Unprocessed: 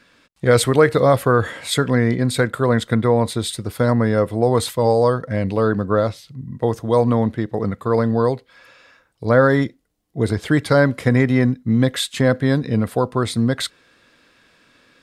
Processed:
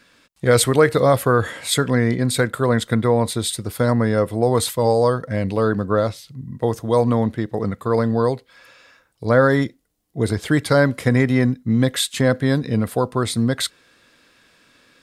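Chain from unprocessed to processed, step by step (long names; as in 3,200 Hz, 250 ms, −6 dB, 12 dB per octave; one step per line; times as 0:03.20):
high-shelf EQ 5,800 Hz +7 dB
level −1 dB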